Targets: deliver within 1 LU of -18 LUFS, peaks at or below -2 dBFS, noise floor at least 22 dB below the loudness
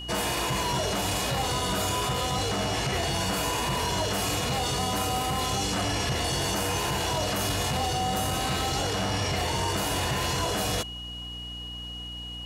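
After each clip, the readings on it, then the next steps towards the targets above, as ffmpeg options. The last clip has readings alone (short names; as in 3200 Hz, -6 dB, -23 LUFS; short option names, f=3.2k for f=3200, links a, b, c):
hum 60 Hz; harmonics up to 300 Hz; hum level -39 dBFS; steady tone 2900 Hz; tone level -37 dBFS; loudness -27.5 LUFS; peak -15.5 dBFS; loudness target -18.0 LUFS
-> -af "bandreject=f=60:t=h:w=6,bandreject=f=120:t=h:w=6,bandreject=f=180:t=h:w=6,bandreject=f=240:t=h:w=6,bandreject=f=300:t=h:w=6"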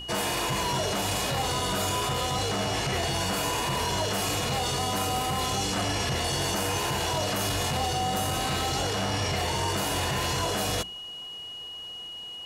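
hum none; steady tone 2900 Hz; tone level -37 dBFS
-> -af "bandreject=f=2.9k:w=30"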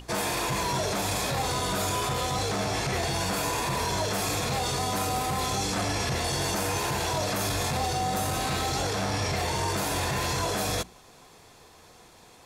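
steady tone none; loudness -27.5 LUFS; peak -16.0 dBFS; loudness target -18.0 LUFS
-> -af "volume=9.5dB"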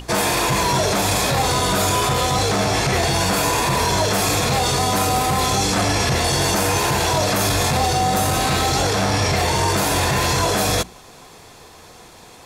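loudness -18.0 LUFS; peak -6.5 dBFS; noise floor -44 dBFS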